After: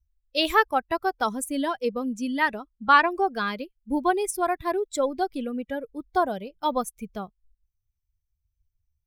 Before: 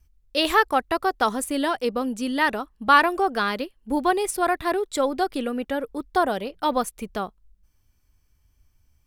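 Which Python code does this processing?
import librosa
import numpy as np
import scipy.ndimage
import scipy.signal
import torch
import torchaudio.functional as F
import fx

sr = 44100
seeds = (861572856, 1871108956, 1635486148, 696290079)

y = fx.bin_expand(x, sr, power=1.5)
y = fx.lowpass(y, sr, hz=fx.line((2.47, 12000.0), (3.1, 6100.0)), slope=12, at=(2.47, 3.1), fade=0.02)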